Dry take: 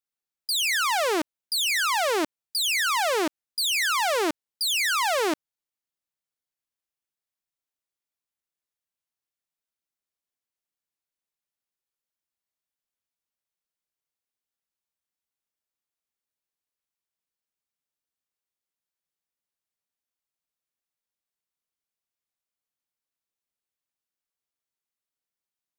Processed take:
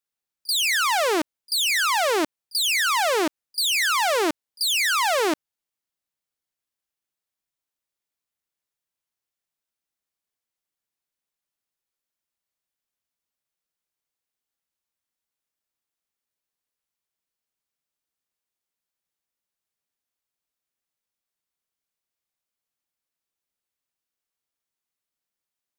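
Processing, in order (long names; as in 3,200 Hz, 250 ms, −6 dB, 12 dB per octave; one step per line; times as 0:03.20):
echo ahead of the sound 37 ms −24 dB
level +2.5 dB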